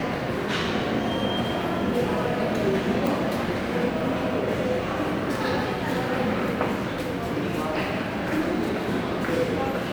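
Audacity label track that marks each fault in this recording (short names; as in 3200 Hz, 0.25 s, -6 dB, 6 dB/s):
3.070000	3.070000	pop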